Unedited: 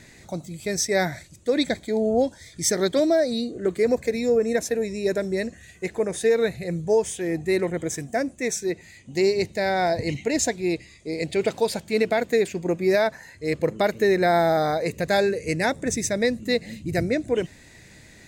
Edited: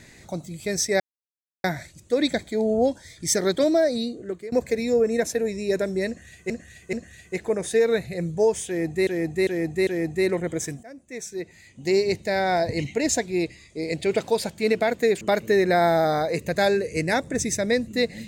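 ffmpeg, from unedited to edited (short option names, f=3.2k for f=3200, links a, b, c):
-filter_complex "[0:a]asplit=10[a][b][c][d][e][f][g][h][i][j];[a]atrim=end=1,asetpts=PTS-STARTPTS,afade=t=out:st=0.996:d=0.004:c=hsin,apad=pad_dur=0.64[k];[b]atrim=start=1:end=3.88,asetpts=PTS-STARTPTS,afade=t=in:d=0.004:c=hsin,afade=t=out:st=2.32:d=0.56:silence=0.1[l];[c]atrim=start=3.88:end=5.862,asetpts=PTS-STARTPTS,afade=t=in:d=0.004:c=hsin:silence=0.1[m];[d]atrim=start=5.428:end=5.862[n];[e]atrim=start=5.428:end=7.572[o];[f]atrim=start=7.168:end=7.572[p];[g]atrim=start=7.168:end=7.572[q];[h]atrim=start=7.168:end=8.13,asetpts=PTS-STARTPTS,afade=t=out:st=0.958:d=0.004:c=hsin:silence=0.0707946[r];[i]atrim=start=8.13:end=12.512,asetpts=PTS-STARTPTS,afade=t=in:d=1.16:silence=0.0707946[s];[j]atrim=start=13.728[t];[k][l][m]concat=n=3:v=0:a=1[u];[u][n]acrossfade=d=0.004:c1=hsin:c2=hsin[v];[v][o]acrossfade=d=0.004:c1=hsin:c2=hsin[w];[w][p]acrossfade=d=0.004:c1=hsin:c2=hsin[x];[x][q]acrossfade=d=0.004:c1=hsin:c2=hsin[y];[r][s]concat=n=2:v=0:a=1[z];[y][z]acrossfade=d=0.004:c1=hsin:c2=hsin[aa];[aa][t]acrossfade=d=0.004:c1=hsin:c2=hsin"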